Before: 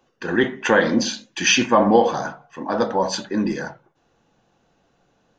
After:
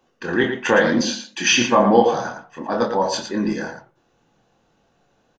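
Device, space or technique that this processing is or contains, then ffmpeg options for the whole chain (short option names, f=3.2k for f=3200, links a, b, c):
slapback doubling: -filter_complex "[0:a]asplit=3[a][b][c];[b]adelay=25,volume=-5dB[d];[c]adelay=113,volume=-8dB[e];[a][d][e]amix=inputs=3:normalize=0,asettb=1/sr,asplit=3[f][g][h];[f]atrim=end=1.014[i];[g]atrim=start=1.01:end=1.53,asetpts=PTS-STARTPTS,afade=t=in:d=0.004:c=qsin,afade=t=out:st=0.516:d=0.004:c=qsin,highpass=f=150:w=0.5412,highpass=f=150:w=1.3066[j];[h]atrim=start=1.526[k];[i][j]acrossfade=d=0.004:c1=hsin:c2=qsin[l];[l][k]acrossfade=d=0.004:c1=qsin:c2=hsin,volume=-1dB"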